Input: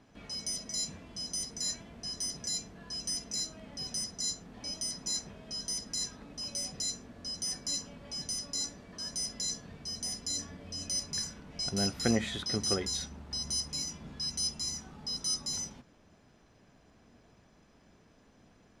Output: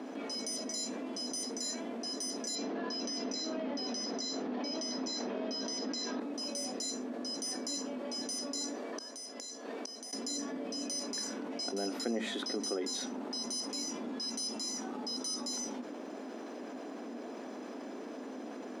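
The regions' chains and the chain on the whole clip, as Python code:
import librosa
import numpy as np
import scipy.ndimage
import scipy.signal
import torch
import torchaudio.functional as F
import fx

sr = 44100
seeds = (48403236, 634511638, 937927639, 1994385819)

y = fx.chain(x, sr, fx.lowpass(hz=5400.0, slope=24),
    fx.env_flatten(amount_pct=70), at=(2.55, 6.2))
y = fx.chain(y, sr, fx.highpass(hz=340.0, slope=12),
    fx.gate_flip(shuts_db=-33.0, range_db=-25), at=(8.75, 10.13))
y = scipy.signal.sosfilt(scipy.signal.ellip(4, 1.0, 50, 250.0, 'highpass', fs=sr, output='sos'), y)
y = fx.tilt_shelf(y, sr, db=6.5, hz=890.0)
y = fx.env_flatten(y, sr, amount_pct=70)
y = F.gain(torch.from_numpy(y), -8.0).numpy()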